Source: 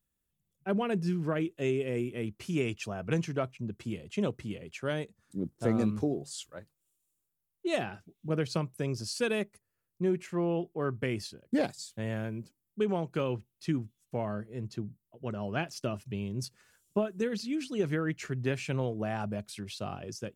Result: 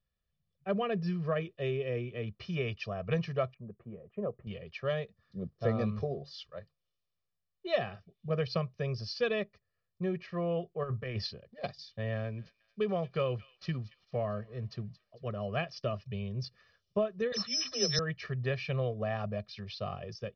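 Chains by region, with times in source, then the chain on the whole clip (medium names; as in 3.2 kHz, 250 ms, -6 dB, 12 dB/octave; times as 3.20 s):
3.54–4.47 s: Bessel low-pass 920 Hz, order 4 + peaking EQ 81 Hz -11.5 dB 2.1 oct
10.83–11.64 s: compressor with a negative ratio -34 dBFS, ratio -0.5 + loudspeaker Doppler distortion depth 0.1 ms
12.15–15.28 s: careless resampling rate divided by 4×, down none, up zero stuff + feedback echo behind a high-pass 225 ms, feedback 44%, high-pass 2.2 kHz, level -14 dB
17.32–17.99 s: steep low-pass 4.2 kHz 48 dB/octave + phase dispersion lows, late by 58 ms, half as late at 340 Hz + careless resampling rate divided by 8×, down none, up zero stuff
whole clip: steep low-pass 5.4 kHz 72 dB/octave; comb 1.7 ms, depth 97%; trim -3.5 dB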